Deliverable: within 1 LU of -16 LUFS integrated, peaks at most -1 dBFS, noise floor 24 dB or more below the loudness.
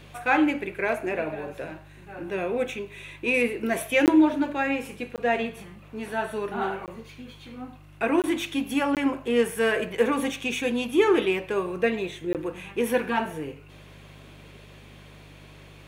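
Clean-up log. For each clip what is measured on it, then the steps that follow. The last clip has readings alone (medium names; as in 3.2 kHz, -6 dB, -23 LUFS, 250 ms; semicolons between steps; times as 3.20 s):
dropouts 6; longest dropout 18 ms; hum 50 Hz; highest harmonic 150 Hz; hum level -48 dBFS; loudness -26.0 LUFS; peak level -8.0 dBFS; loudness target -16.0 LUFS
-> interpolate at 4.06/5.16/6.86/8.22/8.95/12.33 s, 18 ms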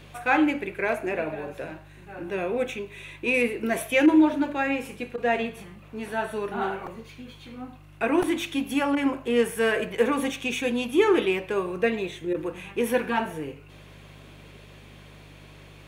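dropouts 0; hum 50 Hz; highest harmonic 150 Hz; hum level -48 dBFS
-> de-hum 50 Hz, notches 3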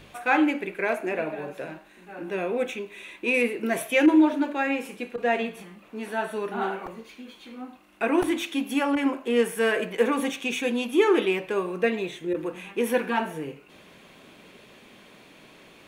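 hum not found; loudness -25.5 LUFS; peak level -8.0 dBFS; loudness target -16.0 LUFS
-> trim +9.5 dB; peak limiter -1 dBFS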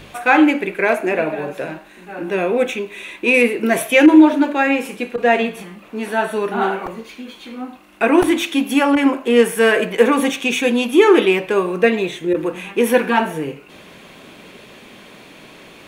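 loudness -16.0 LUFS; peak level -1.0 dBFS; noise floor -43 dBFS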